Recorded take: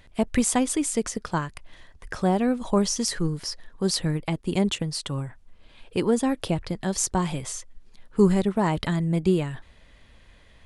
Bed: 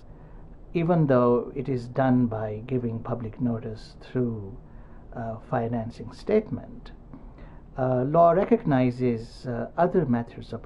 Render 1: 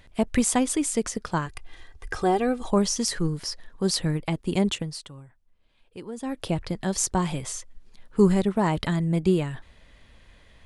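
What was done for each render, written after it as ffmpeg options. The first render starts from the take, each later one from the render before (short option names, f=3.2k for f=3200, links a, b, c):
-filter_complex "[0:a]asettb=1/sr,asplit=3[a][b][c];[a]atrim=end=1.464[d];[b]atrim=start=1.46:end=2.68,asetpts=PTS-STARTPTS,afade=t=in:d=0.004:c=qsin,afade=t=out:st=1.216:d=0.004:c=qsin,aecho=1:1:2.5:0.63,atrim=end_sample=53802[e];[c]atrim=start=2.676[f];[d][e]acrossfade=d=0.004:c1=hsin:c2=qsin[g];[g][f]acrossfade=d=0.004:c1=qsin:c2=hsin,asplit=3[h][i][j];[h]atrim=end=5.13,asetpts=PTS-STARTPTS,afade=t=out:st=4.69:d=0.44:silence=0.177828[k];[i]atrim=start=5.13:end=6.14,asetpts=PTS-STARTPTS,volume=-15dB[l];[j]atrim=start=6.14,asetpts=PTS-STARTPTS,afade=t=in:d=0.44:silence=0.177828[m];[k][l][m]concat=n=3:v=0:a=1"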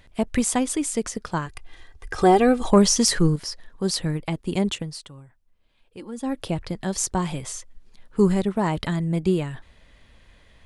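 -filter_complex "[0:a]asettb=1/sr,asplit=3[a][b][c];[a]atrim=end=2.184[d];[b]atrim=start=2.18:end=3.36,asetpts=PTS-STARTPTS,afade=t=in:d=0.004:c=qsin,afade=t=out:st=1.176:d=0.004:c=qsin,acontrast=85[e];[c]atrim=start=3.356[f];[d][e]acrossfade=d=0.004:c1=hsin:c2=qsin[g];[g][f]acrossfade=d=0.004:c1=qsin:c2=hsin,asettb=1/sr,asplit=3[h][i][j];[h]atrim=end=5.994[k];[i]atrim=start=5.99:end=6.42,asetpts=PTS-STARTPTS,afade=t=in:d=0.004:c=qsin,afade=t=out:st=0.426:d=0.004:c=qsin,aecho=1:1:3.6:0.65,atrim=end_sample=18963[l];[j]atrim=start=6.416[m];[k][l]acrossfade=d=0.004:c1=hsin:c2=qsin[n];[n][m]acrossfade=d=0.004:c1=qsin:c2=hsin"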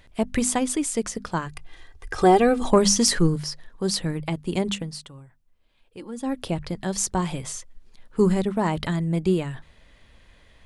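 -af "bandreject=f=50:t=h:w=6,bandreject=f=100:t=h:w=6,bandreject=f=150:t=h:w=6,bandreject=f=200:t=h:w=6,bandreject=f=250:t=h:w=6"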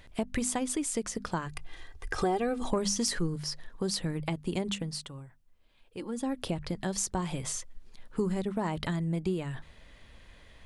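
-af "acompressor=threshold=-30dB:ratio=3"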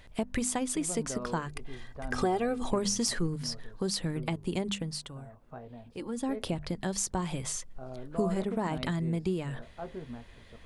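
-filter_complex "[1:a]volume=-19dB[a];[0:a][a]amix=inputs=2:normalize=0"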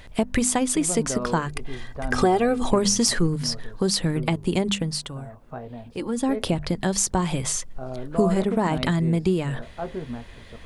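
-af "volume=9dB"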